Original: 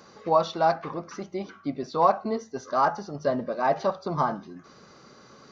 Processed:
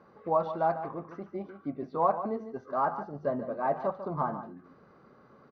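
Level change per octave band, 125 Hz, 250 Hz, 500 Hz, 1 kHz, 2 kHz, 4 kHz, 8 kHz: -4.5 dB, -4.5 dB, -5.0 dB, -5.5 dB, -8.0 dB, under -20 dB, n/a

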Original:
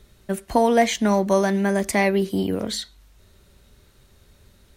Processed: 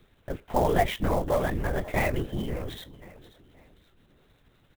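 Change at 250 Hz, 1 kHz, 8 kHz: -11.0, -6.0, -14.0 dB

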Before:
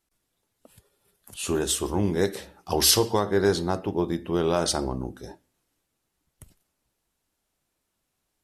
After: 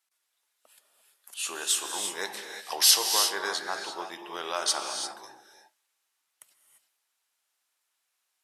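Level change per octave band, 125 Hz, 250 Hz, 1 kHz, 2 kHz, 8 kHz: under -30 dB, -20.0 dB, -2.5 dB, +1.5 dB, +1.5 dB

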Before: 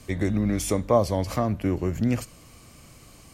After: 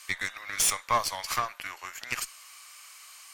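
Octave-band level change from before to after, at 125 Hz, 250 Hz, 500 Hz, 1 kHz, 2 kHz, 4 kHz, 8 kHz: -23.0, -26.0, -15.5, +1.0, +7.0, +7.0, +7.0 dB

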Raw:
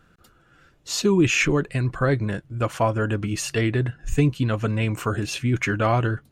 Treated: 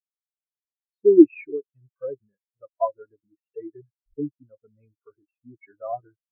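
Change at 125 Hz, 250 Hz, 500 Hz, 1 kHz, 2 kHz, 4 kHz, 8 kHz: -28.5 dB, +0.5 dB, +1.5 dB, -8.0 dB, -23.5 dB, under -40 dB, under -40 dB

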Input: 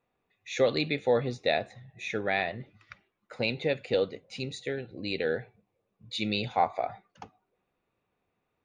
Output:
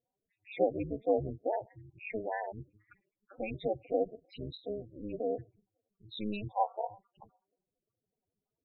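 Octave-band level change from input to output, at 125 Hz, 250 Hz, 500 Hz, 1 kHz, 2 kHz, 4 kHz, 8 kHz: -6.5 dB, -4.0 dB, -4.5 dB, -4.5 dB, -14.5 dB, -16.0 dB, under -30 dB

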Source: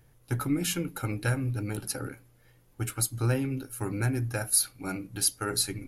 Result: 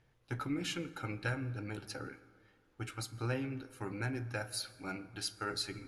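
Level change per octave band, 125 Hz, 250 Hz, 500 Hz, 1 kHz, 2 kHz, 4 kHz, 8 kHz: -10.5, -8.5, -7.0, -5.0, -4.5, -6.5, -17.5 dB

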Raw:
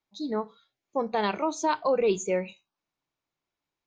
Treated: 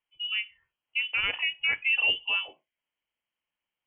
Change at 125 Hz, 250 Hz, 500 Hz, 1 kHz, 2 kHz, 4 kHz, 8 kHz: under -10 dB, under -25 dB, -23.0 dB, -15.0 dB, +12.5 dB, +14.0 dB, under -40 dB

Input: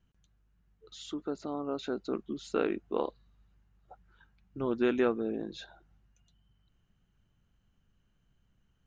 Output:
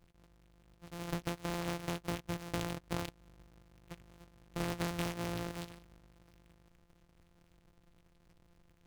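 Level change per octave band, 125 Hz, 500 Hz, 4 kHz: +8.5, -10.5, +1.5 dB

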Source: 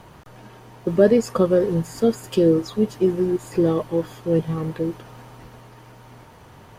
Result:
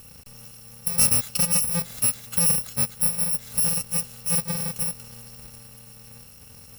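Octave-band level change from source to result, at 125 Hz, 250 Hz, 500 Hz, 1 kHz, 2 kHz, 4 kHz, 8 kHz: -6.5, -14.5, -22.0, -5.5, +0.5, +8.0, +20.0 dB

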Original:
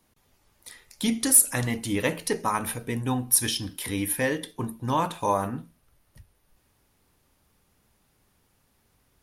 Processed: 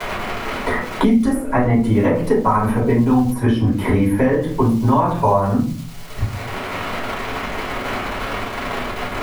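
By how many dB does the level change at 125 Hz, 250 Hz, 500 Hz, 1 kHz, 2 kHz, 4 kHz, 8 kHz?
+14.5, +14.0, +12.5, +10.5, +9.0, +2.5, -14.5 dB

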